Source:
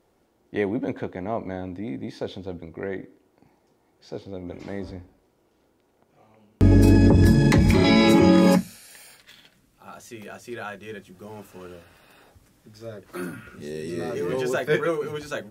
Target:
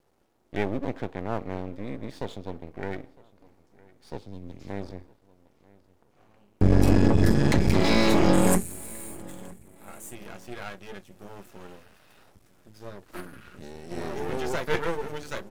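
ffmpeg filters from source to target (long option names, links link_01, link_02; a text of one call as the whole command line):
ffmpeg -i in.wav -filter_complex "[0:a]aeval=exprs='max(val(0),0)':channel_layout=same,asettb=1/sr,asplit=3[link_01][link_02][link_03];[link_01]atrim=end=13.204[link_04];[link_02]atrim=start=13.2:end=13.91,asetpts=PTS-STARTPTS,afade=type=in:duration=0.004:curve=qsin,afade=type=out:start_time=0.706:duration=0.004:curve=qsin,acompressor=threshold=-37dB:ratio=6[link_05];[link_03]atrim=start=13.906[link_06];[link_04][link_05]acrossfade=duration=0.004:curve1=hsin:curve2=qsin[link_07];[link_07][link_06]acrossfade=duration=0.004:curve1=qsin:curve2=hsin,asplit=2[link_08][link_09];[link_09]adelay=959,lowpass=frequency=4100:poles=1,volume=-23dB,asplit=2[link_10][link_11];[link_11]adelay=959,lowpass=frequency=4100:poles=1,volume=0.36[link_12];[link_10][link_12]amix=inputs=2:normalize=0[link_13];[link_08][link_13]amix=inputs=2:normalize=0,asettb=1/sr,asplit=3[link_14][link_15][link_16];[link_14]atrim=end=4.184[link_17];[link_15]atrim=start=4.18:end=4.7,asetpts=PTS-STARTPTS,afade=type=in:duration=0.004:curve=qsin,afade=type=out:start_time=0.516:duration=0.004:curve=qsin,acrossover=split=300|3000[link_18][link_19][link_20];[link_19]acompressor=threshold=-53dB:ratio=4[link_21];[link_18][link_21][link_20]amix=inputs=3:normalize=0[link_22];[link_16]atrim=start=4.696[link_23];[link_17][link_22]acrossfade=duration=0.004:curve1=hsin:curve2=qsin[link_24];[link_24][link_23]acrossfade=duration=0.004:curve1=qsin:curve2=hsin,asettb=1/sr,asplit=3[link_25][link_26][link_27];[link_25]atrim=end=8.334[link_28];[link_26]atrim=start=8.33:end=10.15,asetpts=PTS-STARTPTS,afade=type=in:duration=0.004:curve=qsin,afade=type=out:start_time=1.816:duration=0.004:curve=qsin,highshelf=frequency=6600:width_type=q:width=3:gain=9[link_29];[link_27]atrim=start=10.146[link_30];[link_28][link_29]acrossfade=duration=0.004:curve1=hsin:curve2=qsin[link_31];[link_31][link_30]acrossfade=duration=0.004:curve1=qsin:curve2=hsin" out.wav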